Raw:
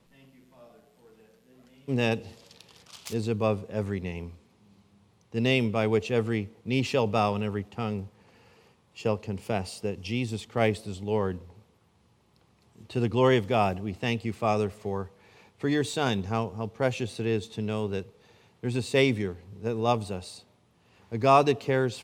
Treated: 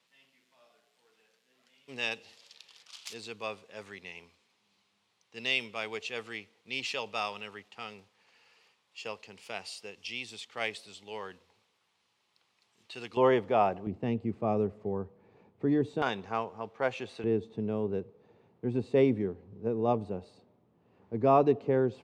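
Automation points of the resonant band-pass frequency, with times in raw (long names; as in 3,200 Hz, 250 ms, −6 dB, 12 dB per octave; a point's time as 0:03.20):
resonant band-pass, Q 0.66
3,500 Hz
from 0:13.17 740 Hz
from 0:13.87 270 Hz
from 0:16.02 1,200 Hz
from 0:17.24 330 Hz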